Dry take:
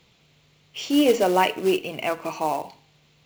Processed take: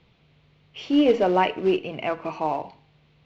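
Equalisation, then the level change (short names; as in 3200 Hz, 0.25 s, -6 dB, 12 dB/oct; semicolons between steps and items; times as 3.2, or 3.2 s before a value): air absorption 240 m; low shelf 110 Hz +6 dB; 0.0 dB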